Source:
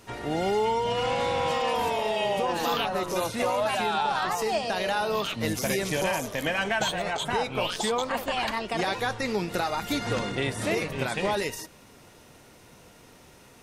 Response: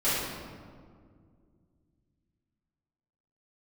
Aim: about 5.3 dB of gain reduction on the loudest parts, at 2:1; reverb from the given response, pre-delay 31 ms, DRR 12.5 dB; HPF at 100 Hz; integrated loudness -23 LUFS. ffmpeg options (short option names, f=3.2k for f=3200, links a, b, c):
-filter_complex "[0:a]highpass=100,acompressor=threshold=-32dB:ratio=2,asplit=2[a][b];[1:a]atrim=start_sample=2205,adelay=31[c];[b][c]afir=irnorm=-1:irlink=0,volume=-25.5dB[d];[a][d]amix=inputs=2:normalize=0,volume=9dB"